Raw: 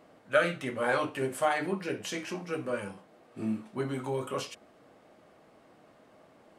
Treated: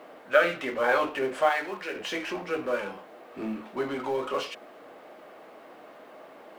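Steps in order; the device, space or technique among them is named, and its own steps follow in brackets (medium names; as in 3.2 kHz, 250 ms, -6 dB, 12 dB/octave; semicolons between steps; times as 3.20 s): phone line with mismatched companding (band-pass 350–3500 Hz; companding laws mixed up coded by mu); 1.49–1.96 s: bass shelf 490 Hz -11.5 dB; trim +4 dB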